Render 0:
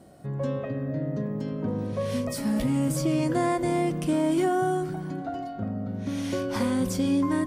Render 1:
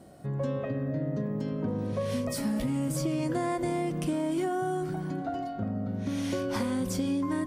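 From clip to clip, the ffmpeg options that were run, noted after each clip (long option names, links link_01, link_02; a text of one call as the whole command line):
ffmpeg -i in.wav -af "acompressor=threshold=-26dB:ratio=6" out.wav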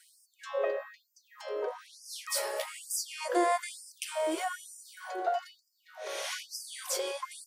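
ffmpeg -i in.wav -af "afftfilt=real='re*gte(b*sr/1024,330*pow(4800/330,0.5+0.5*sin(2*PI*1.1*pts/sr)))':imag='im*gte(b*sr/1024,330*pow(4800/330,0.5+0.5*sin(2*PI*1.1*pts/sr)))':win_size=1024:overlap=0.75,volume=5.5dB" out.wav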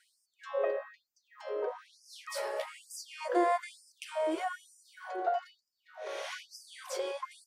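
ffmpeg -i in.wav -af "lowpass=frequency=2000:poles=1" out.wav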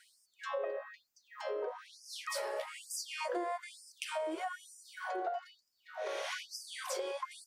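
ffmpeg -i in.wav -af "acompressor=threshold=-41dB:ratio=5,volume=5.5dB" out.wav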